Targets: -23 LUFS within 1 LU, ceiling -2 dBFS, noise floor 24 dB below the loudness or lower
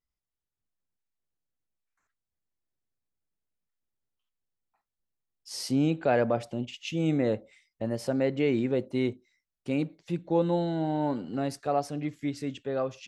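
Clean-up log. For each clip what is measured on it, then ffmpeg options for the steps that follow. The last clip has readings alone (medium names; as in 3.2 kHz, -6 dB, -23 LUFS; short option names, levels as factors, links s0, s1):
loudness -29.5 LUFS; peak level -13.5 dBFS; loudness target -23.0 LUFS
-> -af "volume=2.11"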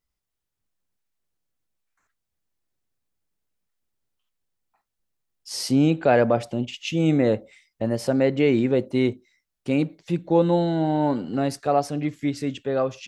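loudness -23.0 LUFS; peak level -7.0 dBFS; noise floor -82 dBFS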